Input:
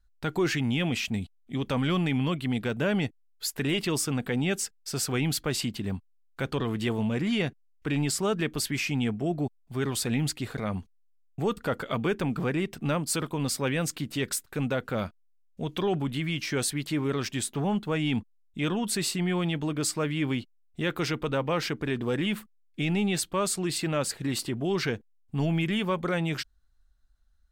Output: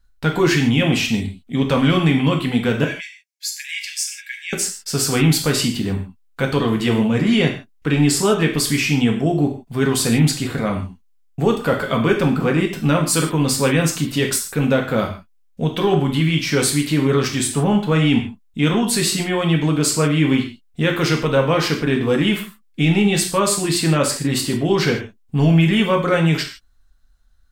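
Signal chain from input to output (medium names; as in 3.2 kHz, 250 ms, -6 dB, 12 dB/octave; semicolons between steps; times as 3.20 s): 2.84–4.53 s: rippled Chebyshev high-pass 1.6 kHz, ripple 9 dB; reverberation, pre-delay 3 ms, DRR 1 dB; trim +8 dB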